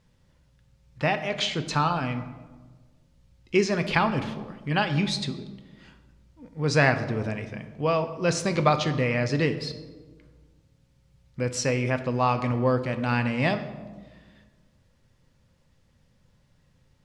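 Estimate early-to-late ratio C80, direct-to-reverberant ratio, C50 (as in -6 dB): 13.0 dB, 8.0 dB, 11.5 dB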